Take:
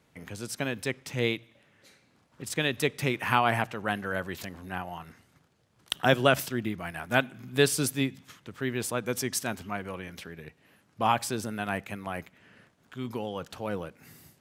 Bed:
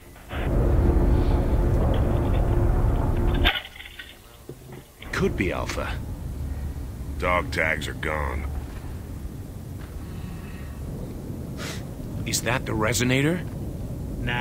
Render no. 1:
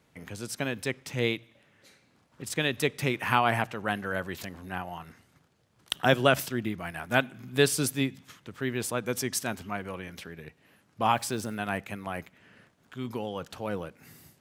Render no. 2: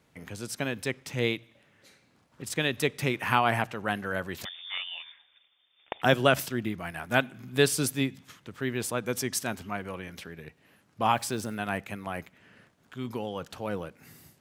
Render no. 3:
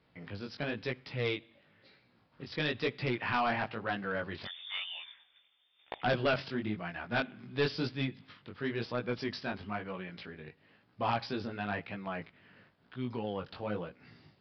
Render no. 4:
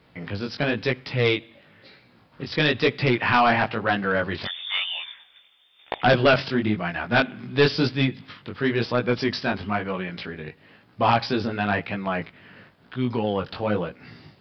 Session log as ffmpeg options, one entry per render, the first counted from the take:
-filter_complex "[0:a]asettb=1/sr,asplit=3[a][b][c];[a]atrim=end=11.114[d];[b]atrim=start=11.11:end=11.55,asetpts=PTS-STARTPTS,afade=t=in:d=0.004:c=qsin,afade=t=out:st=0.436:d=0.004:c=qsin,acrusher=bits=8:mix=0:aa=0.5[e];[c]atrim=start=11.546[f];[d][e]acrossfade=d=0.004:c1=hsin:c2=qsin[g];[g][f]acrossfade=d=0.004:c1=qsin:c2=hsin"
-filter_complex "[0:a]asettb=1/sr,asplit=3[a][b][c];[a]atrim=end=4.454[d];[b]atrim=start=4.45:end=6.02,asetpts=PTS-STARTPTS,afade=t=in:d=0.004:c=qsin,afade=t=out:st=1.566:d=0.004:c=qsin,lowpass=f=3.1k:t=q:w=0.5098,lowpass=f=3.1k:t=q:w=0.6013,lowpass=f=3.1k:t=q:w=0.9,lowpass=f=3.1k:t=q:w=2.563,afreqshift=-3700[e];[c]atrim=start=6.016[f];[d][e]acrossfade=d=0.004:c1=hsin:c2=qsin[g];[g][f]acrossfade=d=0.004:c1=qsin:c2=hsin"
-af "flanger=delay=16:depth=5.3:speed=1,aresample=11025,asoftclip=type=tanh:threshold=-23dB,aresample=44100"
-af "volume=12dB"

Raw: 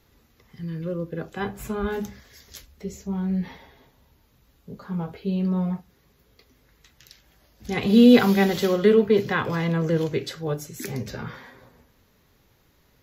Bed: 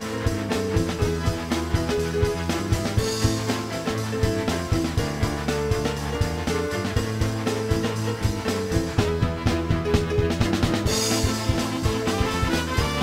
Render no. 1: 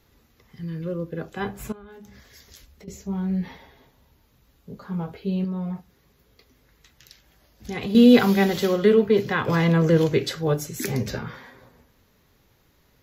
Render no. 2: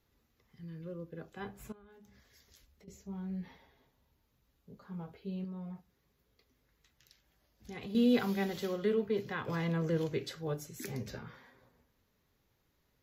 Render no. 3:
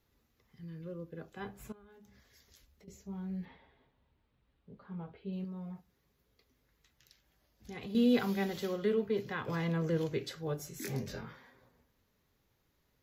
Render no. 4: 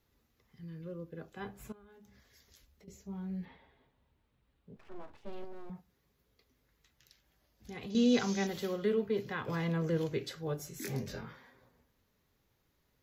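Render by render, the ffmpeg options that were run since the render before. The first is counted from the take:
-filter_complex "[0:a]asettb=1/sr,asplit=3[a][b][c];[a]atrim=end=1.724[d];[b]atrim=start=1.72:end=2.88,asetpts=PTS-STARTPTS,afade=t=in:d=0.004:c=qsin,afade=t=out:st=1.156:d=0.004:c=qsin,acompressor=threshold=-43dB:ratio=6:attack=3.2:release=140:knee=1:detection=peak[e];[c]atrim=start=2.876[f];[d][e]acrossfade=d=0.004:c1=hsin:c2=qsin[g];[g][f]acrossfade=d=0.004:c1=qsin:c2=hsin,asettb=1/sr,asplit=3[h][i][j];[h]atrim=end=5.444[k];[i]atrim=start=5.44:end=7.95,asetpts=PTS-STARTPTS,afade=t=in:d=0.004:c=qsin,afade=t=out:st=2.506:d=0.004:c=qsin,acompressor=threshold=-27dB:ratio=3:attack=3.2:release=140:knee=1:detection=peak[l];[j]atrim=start=7.946[m];[k][l]acrossfade=d=0.004:c1=hsin:c2=qsin[n];[n][m]acrossfade=d=0.004:c1=qsin:c2=hsin,asettb=1/sr,asplit=3[o][p][q];[o]atrim=end=9.484[r];[p]atrim=start=9.48:end=11.19,asetpts=PTS-STARTPTS,afade=t=in:d=0.004:c=qsin,afade=t=out:st=1.706:d=0.004:c=qsin,acontrast=24[s];[q]atrim=start=11.186[t];[r][s]acrossfade=d=0.004:c1=hsin:c2=qsin[u];[u][t]acrossfade=d=0.004:c1=qsin:c2=hsin"
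-af "volume=-14dB"
-filter_complex "[0:a]asettb=1/sr,asplit=3[a][b][c];[a]atrim=end=3.454[d];[b]atrim=start=3.45:end=5.33,asetpts=PTS-STARTPTS,afade=t=in:d=0.004:c=qsin,afade=t=out:st=1.876:d=0.004:c=qsin,lowpass=f=3.7k:w=0.5412,lowpass=f=3.7k:w=1.3066[e];[c]atrim=start=5.326[f];[d][e]acrossfade=d=0.004:c1=hsin:c2=qsin[g];[g][f]acrossfade=d=0.004:c1=qsin:c2=hsin,asettb=1/sr,asplit=3[h][i][j];[h]atrim=end=10.574[k];[i]atrim=start=10.57:end=11.33,asetpts=PTS-STARTPTS,afade=t=in:d=0.004:c=qsin,afade=t=out:st=0.756:d=0.004:c=qsin,asplit=2[l][m];[m]adelay=22,volume=-2dB[n];[l][n]amix=inputs=2:normalize=0,atrim=end_sample=33516[o];[j]atrim=start=11.326[p];[k][o]acrossfade=d=0.004:c1=hsin:c2=qsin[q];[q][p]acrossfade=d=0.004:c1=qsin:c2=hsin"
-filter_complex "[0:a]asettb=1/sr,asplit=3[a][b][c];[a]atrim=end=4.764[d];[b]atrim=start=4.76:end=5.7,asetpts=PTS-STARTPTS,afade=t=in:d=0.004:c=qsin,afade=t=out:st=0.936:d=0.004:c=qsin,aeval=exprs='abs(val(0))':c=same[e];[c]atrim=start=5.696[f];[d][e]acrossfade=d=0.004:c1=hsin:c2=qsin[g];[g][f]acrossfade=d=0.004:c1=qsin:c2=hsin,asettb=1/sr,asplit=3[h][i][j];[h]atrim=end=7.904[k];[i]atrim=start=7.9:end=8.47,asetpts=PTS-STARTPTS,afade=t=in:d=0.004:c=qsin,afade=t=out:st=0.566:d=0.004:c=qsin,lowpass=f=6.2k:t=q:w=7.9[l];[j]atrim=start=8.466[m];[k][l]acrossfade=d=0.004:c1=hsin:c2=qsin[n];[n][m]acrossfade=d=0.004:c1=qsin:c2=hsin"

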